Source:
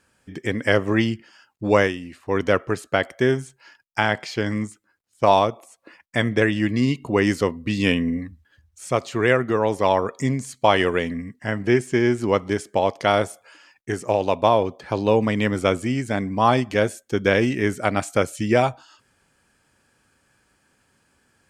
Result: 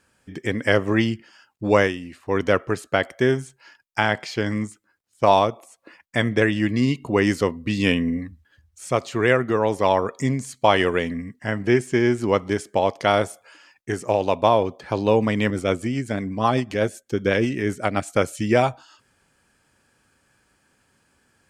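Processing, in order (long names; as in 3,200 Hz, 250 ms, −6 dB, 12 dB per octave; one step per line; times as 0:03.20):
0:15.50–0:18.16: rotating-speaker cabinet horn 8 Hz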